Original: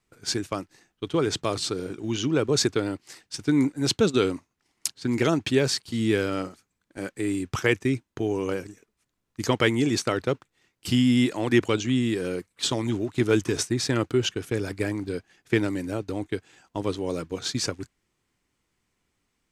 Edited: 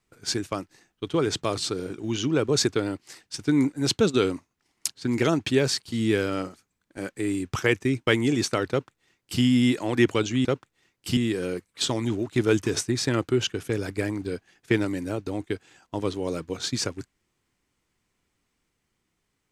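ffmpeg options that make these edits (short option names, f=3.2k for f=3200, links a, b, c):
-filter_complex "[0:a]asplit=4[a][b][c][d];[a]atrim=end=8.072[e];[b]atrim=start=9.608:end=11.992[f];[c]atrim=start=10.238:end=10.962[g];[d]atrim=start=11.988[h];[e][f]acrossfade=d=0.004:c1=hsin:c2=hsin[i];[i][g]acrossfade=d=0.004:c1=hsin:c2=hsin[j];[j][h]acrossfade=d=0.004:c1=hsin:c2=hsin"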